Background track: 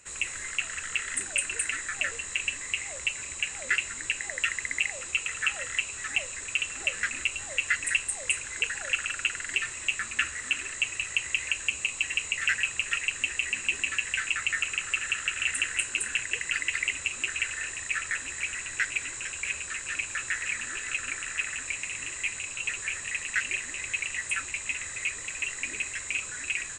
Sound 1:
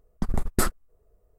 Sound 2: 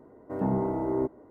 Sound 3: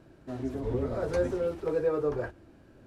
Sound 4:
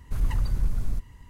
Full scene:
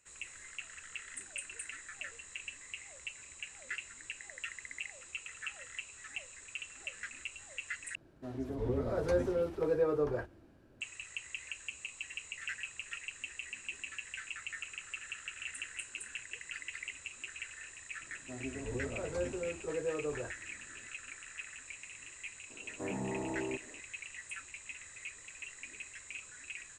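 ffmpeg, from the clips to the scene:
-filter_complex "[3:a]asplit=2[a][b];[0:a]volume=-14.5dB[c];[a]dynaudnorm=f=180:g=7:m=4dB[d];[b]aresample=22050,aresample=44100[e];[2:a]alimiter=level_in=2dB:limit=-24dB:level=0:latency=1:release=71,volume=-2dB[f];[c]asplit=2[g][h];[g]atrim=end=7.954[i];[d]atrim=end=2.86,asetpts=PTS-STARTPTS,volume=-6.5dB[j];[h]atrim=start=10.806[k];[e]atrim=end=2.86,asetpts=PTS-STARTPTS,volume=-8.5dB,afade=t=in:d=0.004:c=hsin,afade=t=out:st=2.856:d=0.004:c=hsin,adelay=18010[l];[f]atrim=end=1.3,asetpts=PTS-STARTPTS,volume=-4.5dB,afade=t=in:d=0.004:c=hsin,afade=t=out:st=1.296:d=0.004:c=hsin,adelay=22500[m];[i][j]acrossfade=d=0.004:c1=hsin:c2=hsin[n];[n][k]acrossfade=d=0.004:c1=hsin:c2=hsin[o];[o][l][m]amix=inputs=3:normalize=0"

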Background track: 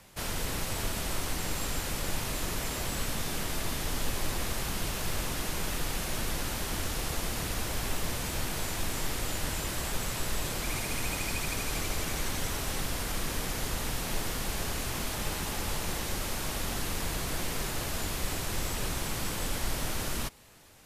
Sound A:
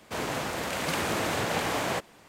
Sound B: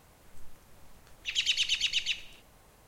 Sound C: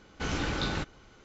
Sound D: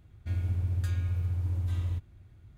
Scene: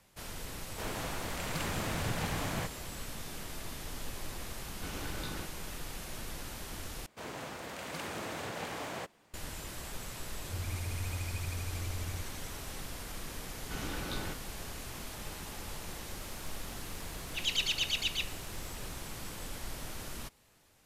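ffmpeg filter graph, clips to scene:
-filter_complex "[1:a]asplit=2[a][b];[3:a]asplit=2[c][d];[0:a]volume=-9.5dB[e];[a]asubboost=boost=8.5:cutoff=180[f];[e]asplit=2[g][h];[g]atrim=end=7.064[i];[b]atrim=end=2.28,asetpts=PTS-STARTPTS,volume=-11dB[j];[h]atrim=start=9.336[k];[f]atrim=end=2.28,asetpts=PTS-STARTPTS,volume=-8dB,afade=t=in:d=0.004:c=hsin,afade=t=out:st=2.276:d=0.004:c=hsin,adelay=670[l];[c]atrim=end=1.24,asetpts=PTS-STARTPTS,volume=-11dB,afade=t=in:d=0.004:c=hsin,afade=t=out:st=1.236:d=0.004:c=hsin,adelay=4620[m];[4:a]atrim=end=2.57,asetpts=PTS-STARTPTS,volume=-9dB,afade=t=in:d=0.004:c=hsin,afade=t=out:st=2.566:d=0.004:c=hsin,adelay=10230[n];[d]atrim=end=1.24,asetpts=PTS-STARTPTS,volume=-8.5dB,afade=t=in:d=0.004:c=hsin,afade=t=out:st=1.236:d=0.004:c=hsin,adelay=13500[o];[2:a]atrim=end=2.87,asetpts=PTS-STARTPTS,volume=-3.5dB,afade=t=in:d=0.004:c=hsin,afade=t=out:st=2.866:d=0.004:c=hsin,adelay=16090[p];[i][j]acrossfade=d=0.004:c1=hsin:c2=hsin[q];[q][k]acrossfade=d=0.004:c1=hsin:c2=hsin[r];[r][l][m][n][o][p]amix=inputs=6:normalize=0"

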